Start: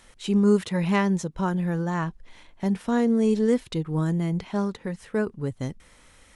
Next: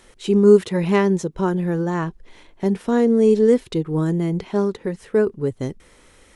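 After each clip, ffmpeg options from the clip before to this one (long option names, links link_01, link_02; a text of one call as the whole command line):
ffmpeg -i in.wav -af "equalizer=frequency=390:width=2:gain=9.5,volume=2dB" out.wav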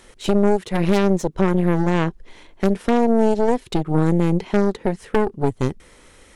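ffmpeg -i in.wav -af "acompressor=threshold=-19dB:ratio=6,aeval=exprs='0.237*(cos(1*acos(clip(val(0)/0.237,-1,1)))-cos(1*PI/2))+0.0944*(cos(4*acos(clip(val(0)/0.237,-1,1)))-cos(4*PI/2))+0.0168*(cos(6*acos(clip(val(0)/0.237,-1,1)))-cos(6*PI/2))':channel_layout=same,volume=2.5dB" out.wav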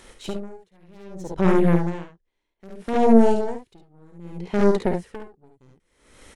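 ffmpeg -i in.wav -filter_complex "[0:a]asplit=2[link_01][link_02];[link_02]aecho=0:1:53|70:0.501|0.631[link_03];[link_01][link_03]amix=inputs=2:normalize=0,aeval=exprs='val(0)*pow(10,-36*(0.5-0.5*cos(2*PI*0.63*n/s))/20)':channel_layout=same" out.wav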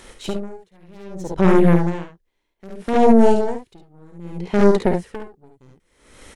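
ffmpeg -i in.wav -af "alimiter=level_in=5.5dB:limit=-1dB:release=50:level=0:latency=1,volume=-1dB" out.wav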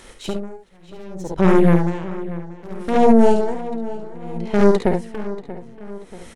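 ffmpeg -i in.wav -filter_complex "[0:a]asplit=2[link_01][link_02];[link_02]adelay=634,lowpass=frequency=4000:poles=1,volume=-15dB,asplit=2[link_03][link_04];[link_04]adelay=634,lowpass=frequency=4000:poles=1,volume=0.51,asplit=2[link_05][link_06];[link_06]adelay=634,lowpass=frequency=4000:poles=1,volume=0.51,asplit=2[link_07][link_08];[link_08]adelay=634,lowpass=frequency=4000:poles=1,volume=0.51,asplit=2[link_09][link_10];[link_10]adelay=634,lowpass=frequency=4000:poles=1,volume=0.51[link_11];[link_01][link_03][link_05][link_07][link_09][link_11]amix=inputs=6:normalize=0" out.wav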